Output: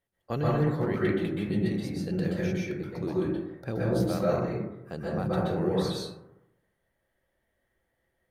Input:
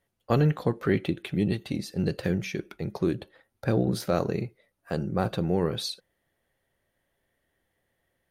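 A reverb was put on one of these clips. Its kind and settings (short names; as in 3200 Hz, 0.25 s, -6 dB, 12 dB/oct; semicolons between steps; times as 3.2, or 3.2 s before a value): plate-style reverb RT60 0.93 s, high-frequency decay 0.3×, pre-delay 0.115 s, DRR -6.5 dB; gain -8.5 dB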